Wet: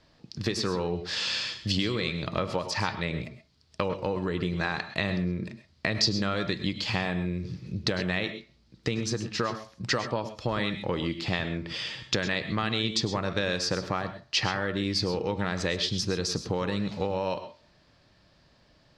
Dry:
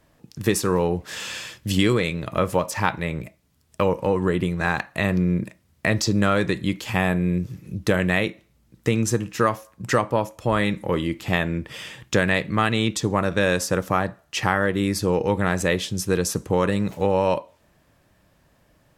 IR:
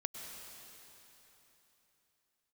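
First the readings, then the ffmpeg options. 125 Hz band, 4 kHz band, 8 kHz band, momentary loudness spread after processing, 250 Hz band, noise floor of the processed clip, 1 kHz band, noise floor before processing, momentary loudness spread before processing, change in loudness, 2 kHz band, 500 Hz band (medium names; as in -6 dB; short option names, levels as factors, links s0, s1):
-7.0 dB, +1.5 dB, -7.0 dB, 6 LU, -7.5 dB, -63 dBFS, -8.0 dB, -62 dBFS, 8 LU, -6.5 dB, -6.5 dB, -8.5 dB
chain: -filter_complex "[0:a]acompressor=threshold=0.0708:ratio=6,lowpass=f=4600:t=q:w=4[s0];[1:a]atrim=start_sample=2205,atrim=end_sample=6174[s1];[s0][s1]afir=irnorm=-1:irlink=0"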